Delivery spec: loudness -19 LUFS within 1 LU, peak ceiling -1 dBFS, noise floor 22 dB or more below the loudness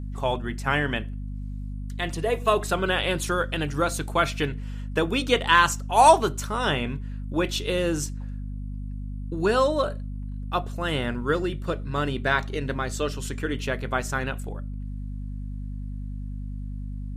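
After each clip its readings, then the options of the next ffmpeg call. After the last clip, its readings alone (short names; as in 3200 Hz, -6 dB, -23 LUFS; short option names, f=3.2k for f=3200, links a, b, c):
hum 50 Hz; harmonics up to 250 Hz; hum level -30 dBFS; loudness -25.0 LUFS; peak -3.5 dBFS; loudness target -19.0 LUFS
-> -af "bandreject=f=50:t=h:w=6,bandreject=f=100:t=h:w=6,bandreject=f=150:t=h:w=6,bandreject=f=200:t=h:w=6,bandreject=f=250:t=h:w=6"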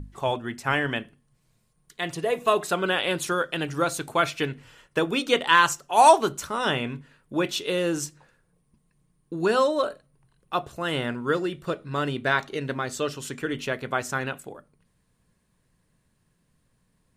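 hum none; loudness -25.0 LUFS; peak -4.0 dBFS; loudness target -19.0 LUFS
-> -af "volume=6dB,alimiter=limit=-1dB:level=0:latency=1"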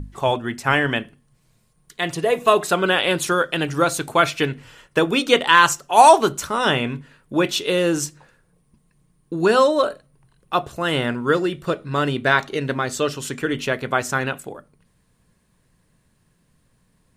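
loudness -19.5 LUFS; peak -1.0 dBFS; noise floor -64 dBFS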